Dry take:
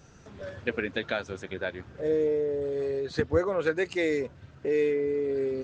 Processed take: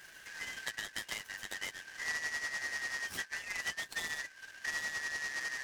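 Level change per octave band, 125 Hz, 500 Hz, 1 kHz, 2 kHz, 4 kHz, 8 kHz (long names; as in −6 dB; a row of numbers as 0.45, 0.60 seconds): −22.0 dB, −30.5 dB, −7.5 dB, +1.0 dB, +2.0 dB, can't be measured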